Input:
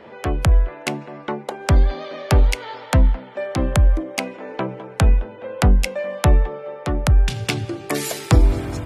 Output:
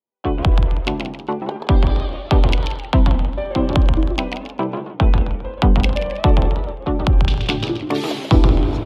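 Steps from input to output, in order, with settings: gate -31 dBFS, range -55 dB; EQ curve 130 Hz 0 dB, 320 Hz +6 dB, 500 Hz 0 dB, 990 Hz +5 dB, 1800 Hz -6 dB, 3300 Hz +6 dB, 8000 Hz -16 dB; echo 0.18 s -12.5 dB; warbling echo 0.134 s, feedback 33%, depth 186 cents, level -6 dB

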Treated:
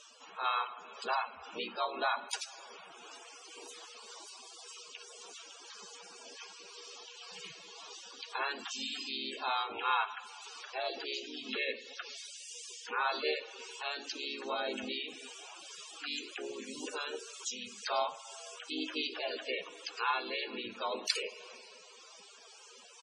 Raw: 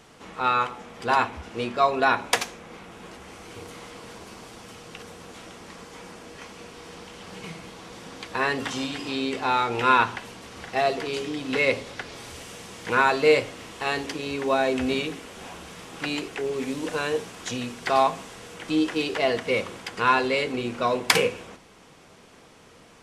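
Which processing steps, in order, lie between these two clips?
harmoniser -3 st -3 dB, +4 st -14 dB; tilt +4.5 dB/oct; compressor 1.5:1, threshold -34 dBFS, peak gain reduction 11 dB; reverb RT60 3.0 s, pre-delay 35 ms, DRR 14 dB; loudest bins only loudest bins 64; tremolo 1.9 Hz, depth 28%; reverse; upward compressor, threshold -42 dBFS; reverse; LPF 7900 Hz 12 dB/oct; bell 2000 Hz -14 dB 0.32 oct; gain -5 dB

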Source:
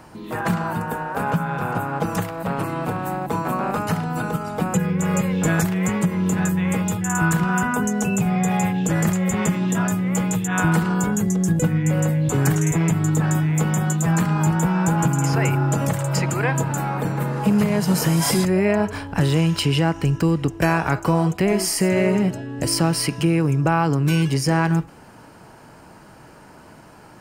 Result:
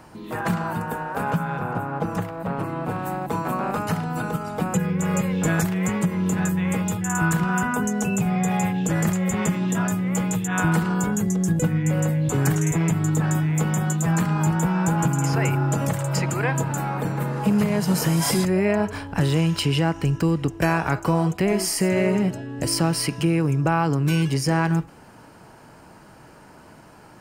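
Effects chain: 1.58–2.9 high shelf 2500 Hz -9.5 dB; gain -2 dB

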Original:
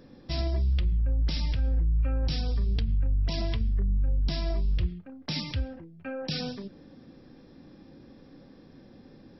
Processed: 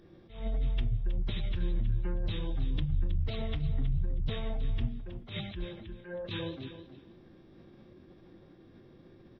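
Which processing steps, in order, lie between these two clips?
formant-preserving pitch shift -7 st; feedback echo 0.318 s, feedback 17%, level -12 dB; attack slew limiter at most 130 dB/s; gain -2.5 dB

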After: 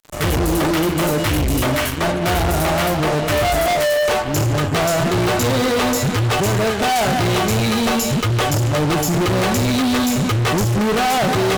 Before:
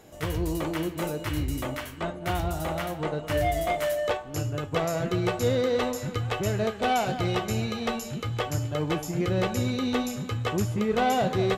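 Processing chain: notch 500 Hz, Q 12; fuzz box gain 40 dB, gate -45 dBFS; gain -2.5 dB

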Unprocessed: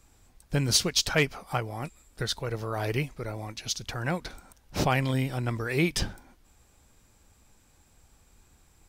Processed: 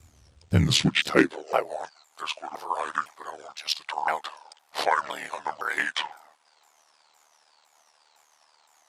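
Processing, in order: repeated pitch sweeps -11 st, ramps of 0.51 s; ring modulator 38 Hz; high-pass sweep 73 Hz -> 850 Hz, 0.36–1.89; gain +6 dB

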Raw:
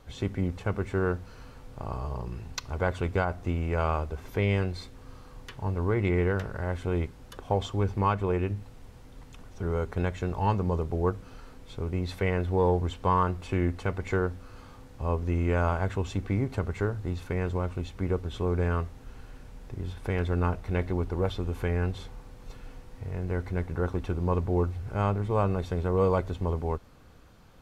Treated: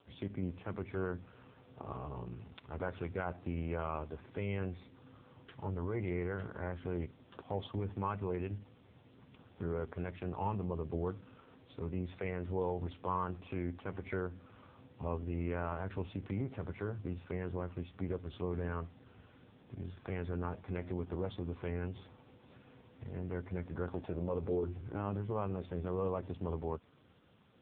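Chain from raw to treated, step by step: 23.92–25.14 bell 740 Hz -> 250 Hz +12 dB 0.43 oct; limiter -21 dBFS, peak gain reduction 10 dB; added noise violet -46 dBFS; gain -5 dB; AMR-NB 5.9 kbps 8000 Hz

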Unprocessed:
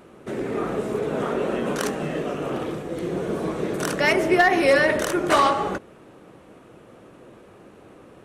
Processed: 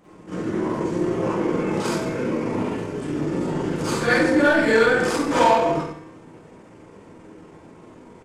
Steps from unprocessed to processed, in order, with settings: in parallel at -9 dB: hard clip -24 dBFS, distortion -5 dB; on the sum: resonator 130 Hz, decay 1.1 s, harmonics odd, mix 70%; on a send: early reflections 39 ms -16.5 dB, 59 ms -12 dB; on the sum: Schroeder reverb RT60 0.52 s, combs from 29 ms, DRR -9.5 dB; pitch shift -3.5 st

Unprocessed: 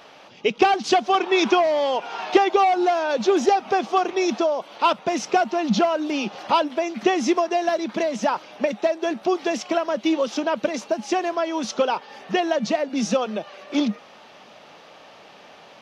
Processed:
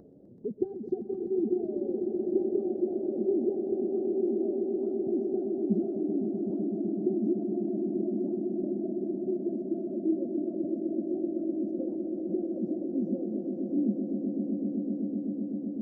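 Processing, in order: inverse Chebyshev low-pass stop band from 960 Hz, stop band 50 dB; upward compressor, threshold -36 dBFS; swelling echo 0.127 s, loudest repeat 8, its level -8.5 dB; gain -6.5 dB

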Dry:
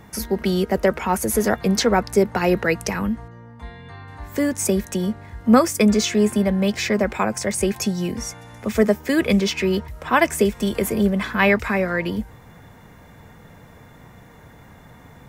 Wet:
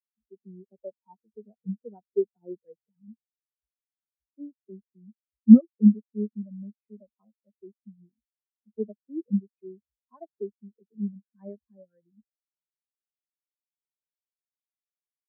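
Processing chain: treble ducked by the level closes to 1500 Hz, closed at -17 dBFS; spectral expander 4:1; gain +2 dB

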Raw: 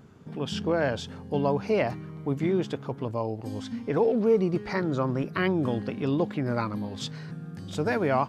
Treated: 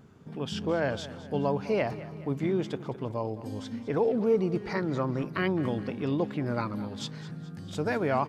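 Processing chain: feedback echo 0.211 s, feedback 49%, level -16 dB; gain -2.5 dB

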